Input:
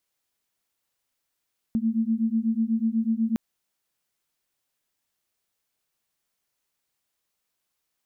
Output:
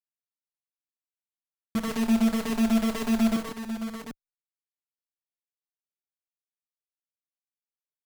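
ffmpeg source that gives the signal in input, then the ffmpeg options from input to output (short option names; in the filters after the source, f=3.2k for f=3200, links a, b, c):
-f lavfi -i "aevalsrc='0.0596*(sin(2*PI*221*t)+sin(2*PI*229.1*t))':d=1.61:s=44100"
-filter_complex "[0:a]acrusher=bits=5:dc=4:mix=0:aa=0.000001,asplit=2[a][b];[b]aecho=0:1:49|127|152|678|745:0.266|0.422|0.398|0.168|0.398[c];[a][c]amix=inputs=2:normalize=0,asplit=2[d][e];[e]adelay=5.2,afreqshift=-1.9[f];[d][f]amix=inputs=2:normalize=1"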